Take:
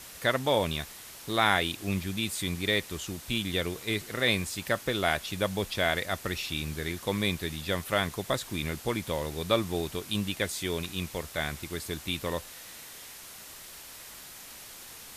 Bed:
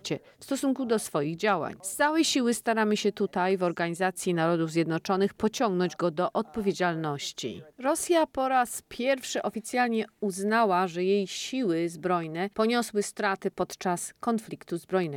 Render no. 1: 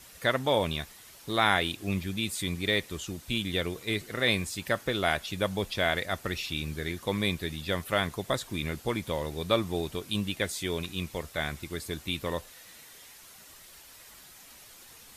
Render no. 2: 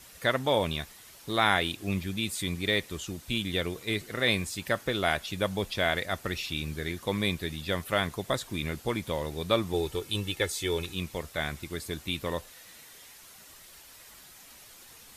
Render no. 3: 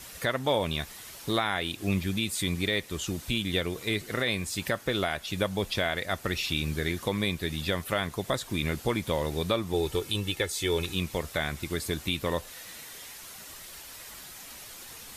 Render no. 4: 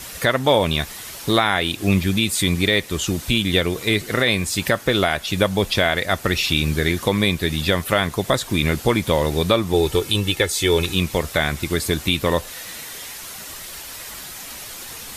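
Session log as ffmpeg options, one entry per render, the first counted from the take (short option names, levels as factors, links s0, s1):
-af "afftdn=nr=7:nf=-47"
-filter_complex "[0:a]asettb=1/sr,asplit=3[s0][s1][s2];[s0]atrim=end=9.734[s3];[s1]atrim=start=9.73:end=10.94,asetpts=PTS-STARTPTS,afade=t=in:d=0.004:c=qsin,afade=t=out:st=1.206:d=0.004:c=qsin,aecho=1:1:2.3:0.6,atrim=end_sample=53361[s4];[s2]atrim=start=10.936[s5];[s3][s4]acrossfade=d=0.004:c1=hsin:c2=qsin[s6];[s6][s5]acrossfade=d=0.004:c1=qsin:c2=hsin"
-filter_complex "[0:a]asplit=2[s0][s1];[s1]acompressor=threshold=0.0178:ratio=6,volume=1.12[s2];[s0][s2]amix=inputs=2:normalize=0,alimiter=limit=0.178:level=0:latency=1:release=372"
-af "volume=3.16"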